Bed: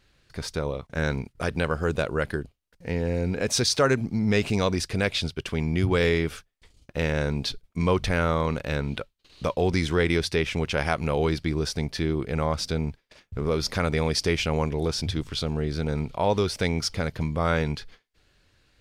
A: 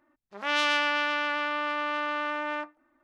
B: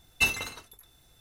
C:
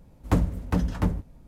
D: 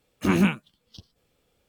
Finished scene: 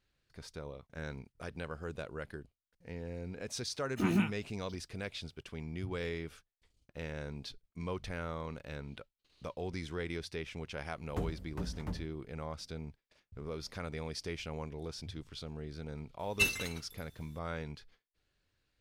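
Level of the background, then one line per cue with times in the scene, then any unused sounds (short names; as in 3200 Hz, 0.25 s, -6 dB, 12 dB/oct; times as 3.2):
bed -16 dB
3.75 add D -9 dB + notch comb 550 Hz
10.85 add C -15 dB
16.19 add B -4 dB + bell 840 Hz -9.5 dB 1 oct
not used: A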